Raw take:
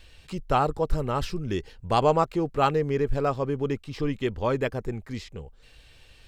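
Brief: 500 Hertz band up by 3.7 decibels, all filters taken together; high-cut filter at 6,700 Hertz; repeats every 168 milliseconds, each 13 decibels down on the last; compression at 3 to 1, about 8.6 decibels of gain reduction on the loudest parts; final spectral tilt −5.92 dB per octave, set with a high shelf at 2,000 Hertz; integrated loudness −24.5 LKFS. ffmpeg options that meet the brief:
ffmpeg -i in.wav -af "lowpass=6700,equalizer=frequency=500:width_type=o:gain=5,highshelf=frequency=2000:gain=-7,acompressor=threshold=-26dB:ratio=3,aecho=1:1:168|336|504:0.224|0.0493|0.0108,volume=6dB" out.wav

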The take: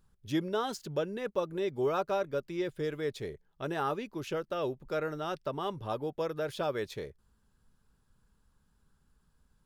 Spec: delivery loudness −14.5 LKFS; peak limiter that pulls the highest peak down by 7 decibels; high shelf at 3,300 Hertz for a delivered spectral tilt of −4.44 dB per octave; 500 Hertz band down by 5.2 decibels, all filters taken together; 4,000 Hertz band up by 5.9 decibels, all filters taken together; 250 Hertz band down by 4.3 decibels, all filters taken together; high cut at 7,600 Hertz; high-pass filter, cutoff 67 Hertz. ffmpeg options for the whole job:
ffmpeg -i in.wav -af "highpass=67,lowpass=7600,equalizer=frequency=250:width_type=o:gain=-4,equalizer=frequency=500:width_type=o:gain=-5.5,highshelf=frequency=3300:gain=4,equalizer=frequency=4000:width_type=o:gain=5,volume=24.5dB,alimiter=limit=-3.5dB:level=0:latency=1" out.wav

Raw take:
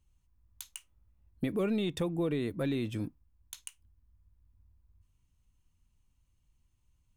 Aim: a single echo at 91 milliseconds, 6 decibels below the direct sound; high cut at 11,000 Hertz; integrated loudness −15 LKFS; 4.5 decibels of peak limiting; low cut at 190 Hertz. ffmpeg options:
ffmpeg -i in.wav -af "highpass=190,lowpass=11000,alimiter=level_in=2.5dB:limit=-24dB:level=0:latency=1,volume=-2.5dB,aecho=1:1:91:0.501,volume=21.5dB" out.wav

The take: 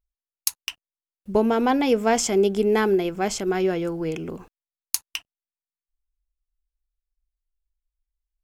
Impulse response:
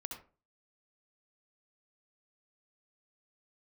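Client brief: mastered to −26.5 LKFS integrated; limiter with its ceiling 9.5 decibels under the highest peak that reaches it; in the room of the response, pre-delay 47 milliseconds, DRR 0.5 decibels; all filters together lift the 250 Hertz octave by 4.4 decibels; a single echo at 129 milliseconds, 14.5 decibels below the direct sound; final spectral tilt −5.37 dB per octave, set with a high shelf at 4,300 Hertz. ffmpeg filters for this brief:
-filter_complex "[0:a]equalizer=frequency=250:width_type=o:gain=5.5,highshelf=frequency=4300:gain=-3.5,alimiter=limit=-15dB:level=0:latency=1,aecho=1:1:129:0.188,asplit=2[link_01][link_02];[1:a]atrim=start_sample=2205,adelay=47[link_03];[link_02][link_03]afir=irnorm=-1:irlink=0,volume=1.5dB[link_04];[link_01][link_04]amix=inputs=2:normalize=0,volume=-6dB"

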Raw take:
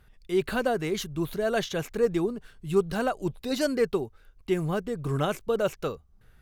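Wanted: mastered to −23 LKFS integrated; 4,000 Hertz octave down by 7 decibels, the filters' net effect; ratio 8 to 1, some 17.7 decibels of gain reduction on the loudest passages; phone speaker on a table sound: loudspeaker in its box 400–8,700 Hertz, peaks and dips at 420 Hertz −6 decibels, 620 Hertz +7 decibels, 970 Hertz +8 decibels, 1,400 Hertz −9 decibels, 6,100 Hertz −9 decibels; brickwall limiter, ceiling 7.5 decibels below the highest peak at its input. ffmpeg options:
ffmpeg -i in.wav -af "equalizer=frequency=4000:width_type=o:gain=-8.5,acompressor=threshold=-38dB:ratio=8,alimiter=level_in=11dB:limit=-24dB:level=0:latency=1,volume=-11dB,highpass=frequency=400:width=0.5412,highpass=frequency=400:width=1.3066,equalizer=frequency=420:width_type=q:width=4:gain=-6,equalizer=frequency=620:width_type=q:width=4:gain=7,equalizer=frequency=970:width_type=q:width=4:gain=8,equalizer=frequency=1400:width_type=q:width=4:gain=-9,equalizer=frequency=6100:width_type=q:width=4:gain=-9,lowpass=frequency=8700:width=0.5412,lowpass=frequency=8700:width=1.3066,volume=24.5dB" out.wav

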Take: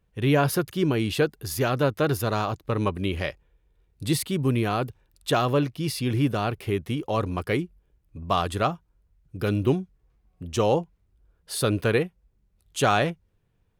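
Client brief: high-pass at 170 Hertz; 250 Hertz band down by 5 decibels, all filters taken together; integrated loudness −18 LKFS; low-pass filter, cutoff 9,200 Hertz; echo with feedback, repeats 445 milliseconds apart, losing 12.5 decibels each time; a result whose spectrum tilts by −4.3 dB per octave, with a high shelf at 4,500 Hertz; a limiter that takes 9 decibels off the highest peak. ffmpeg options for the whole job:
ffmpeg -i in.wav -af "highpass=170,lowpass=9200,equalizer=frequency=250:width_type=o:gain=-5.5,highshelf=frequency=4500:gain=3,alimiter=limit=-16dB:level=0:latency=1,aecho=1:1:445|890|1335:0.237|0.0569|0.0137,volume=12.5dB" out.wav

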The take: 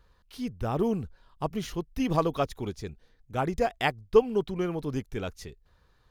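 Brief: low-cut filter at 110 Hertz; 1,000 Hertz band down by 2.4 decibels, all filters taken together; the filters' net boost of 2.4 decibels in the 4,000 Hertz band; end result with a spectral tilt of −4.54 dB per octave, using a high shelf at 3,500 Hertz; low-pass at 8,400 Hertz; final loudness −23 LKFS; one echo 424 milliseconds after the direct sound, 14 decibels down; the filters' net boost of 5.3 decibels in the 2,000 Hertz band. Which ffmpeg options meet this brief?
ffmpeg -i in.wav -af "highpass=110,lowpass=8400,equalizer=frequency=1000:width_type=o:gain=-5,equalizer=frequency=2000:width_type=o:gain=8.5,highshelf=frequency=3500:gain=-6.5,equalizer=frequency=4000:width_type=o:gain=4,aecho=1:1:424:0.2,volume=6.5dB" out.wav

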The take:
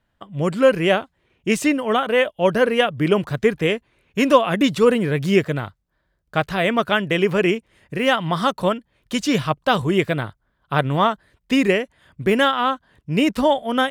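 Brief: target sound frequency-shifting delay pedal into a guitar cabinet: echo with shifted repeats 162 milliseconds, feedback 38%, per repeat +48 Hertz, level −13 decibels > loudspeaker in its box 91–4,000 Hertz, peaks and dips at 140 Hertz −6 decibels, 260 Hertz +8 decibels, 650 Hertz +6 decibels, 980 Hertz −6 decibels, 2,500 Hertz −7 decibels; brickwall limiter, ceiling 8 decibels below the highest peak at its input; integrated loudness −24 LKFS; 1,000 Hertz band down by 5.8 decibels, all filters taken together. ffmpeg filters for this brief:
ffmpeg -i in.wav -filter_complex "[0:a]equalizer=frequency=1000:width_type=o:gain=-8,alimiter=limit=-12dB:level=0:latency=1,asplit=5[link_01][link_02][link_03][link_04][link_05];[link_02]adelay=162,afreqshift=48,volume=-13dB[link_06];[link_03]adelay=324,afreqshift=96,volume=-21.4dB[link_07];[link_04]adelay=486,afreqshift=144,volume=-29.8dB[link_08];[link_05]adelay=648,afreqshift=192,volume=-38.2dB[link_09];[link_01][link_06][link_07][link_08][link_09]amix=inputs=5:normalize=0,highpass=91,equalizer=frequency=140:width_type=q:width=4:gain=-6,equalizer=frequency=260:width_type=q:width=4:gain=8,equalizer=frequency=650:width_type=q:width=4:gain=6,equalizer=frequency=980:width_type=q:width=4:gain=-6,equalizer=frequency=2500:width_type=q:width=4:gain=-7,lowpass=frequency=4000:width=0.5412,lowpass=frequency=4000:width=1.3066,volume=-2.5dB" out.wav

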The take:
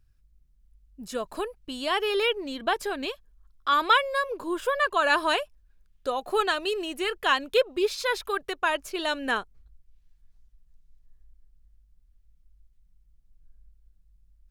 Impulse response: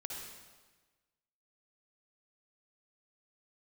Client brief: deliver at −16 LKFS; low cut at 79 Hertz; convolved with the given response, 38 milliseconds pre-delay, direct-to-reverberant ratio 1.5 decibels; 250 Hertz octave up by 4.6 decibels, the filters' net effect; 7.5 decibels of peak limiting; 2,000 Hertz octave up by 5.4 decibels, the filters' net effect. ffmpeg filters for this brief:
-filter_complex "[0:a]highpass=79,equalizer=frequency=250:width_type=o:gain=6.5,equalizer=frequency=2000:width_type=o:gain=7,alimiter=limit=-13dB:level=0:latency=1,asplit=2[link_01][link_02];[1:a]atrim=start_sample=2205,adelay=38[link_03];[link_02][link_03]afir=irnorm=-1:irlink=0,volume=-0.5dB[link_04];[link_01][link_04]amix=inputs=2:normalize=0,volume=7dB"

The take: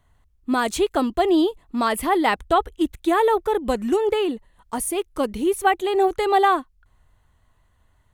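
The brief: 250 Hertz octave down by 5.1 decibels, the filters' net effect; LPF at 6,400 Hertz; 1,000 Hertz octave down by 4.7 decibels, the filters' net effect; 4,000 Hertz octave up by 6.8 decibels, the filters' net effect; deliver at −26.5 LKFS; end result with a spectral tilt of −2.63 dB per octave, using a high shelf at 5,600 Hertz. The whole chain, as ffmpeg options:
ffmpeg -i in.wav -af "lowpass=6400,equalizer=frequency=250:width_type=o:gain=-7,equalizer=frequency=1000:width_type=o:gain=-6.5,equalizer=frequency=4000:width_type=o:gain=8.5,highshelf=frequency=5600:gain=4,volume=-2dB" out.wav

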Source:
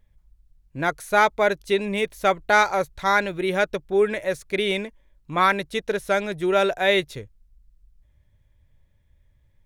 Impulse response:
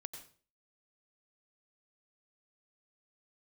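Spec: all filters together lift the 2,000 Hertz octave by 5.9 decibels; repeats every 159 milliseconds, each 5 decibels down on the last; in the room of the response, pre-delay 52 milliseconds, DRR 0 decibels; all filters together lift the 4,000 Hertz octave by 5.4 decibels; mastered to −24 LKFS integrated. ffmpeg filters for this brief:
-filter_complex "[0:a]equalizer=frequency=2000:width_type=o:gain=7,equalizer=frequency=4000:width_type=o:gain=4,aecho=1:1:159|318|477|636|795|954|1113:0.562|0.315|0.176|0.0988|0.0553|0.031|0.0173,asplit=2[link_01][link_02];[1:a]atrim=start_sample=2205,adelay=52[link_03];[link_02][link_03]afir=irnorm=-1:irlink=0,volume=3.5dB[link_04];[link_01][link_04]amix=inputs=2:normalize=0,volume=-9dB"

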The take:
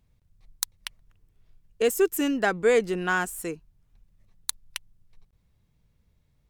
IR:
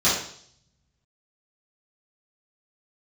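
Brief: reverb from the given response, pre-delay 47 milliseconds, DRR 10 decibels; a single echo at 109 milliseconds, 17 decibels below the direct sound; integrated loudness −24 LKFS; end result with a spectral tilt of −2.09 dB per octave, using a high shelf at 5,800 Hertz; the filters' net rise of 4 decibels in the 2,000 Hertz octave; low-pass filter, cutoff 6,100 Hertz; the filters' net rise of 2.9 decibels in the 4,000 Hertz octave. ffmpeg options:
-filter_complex "[0:a]lowpass=6100,equalizer=frequency=2000:width_type=o:gain=5.5,equalizer=frequency=4000:width_type=o:gain=3.5,highshelf=frequency=5800:gain=-4,aecho=1:1:109:0.141,asplit=2[link_01][link_02];[1:a]atrim=start_sample=2205,adelay=47[link_03];[link_02][link_03]afir=irnorm=-1:irlink=0,volume=-27dB[link_04];[link_01][link_04]amix=inputs=2:normalize=0,volume=1.5dB"

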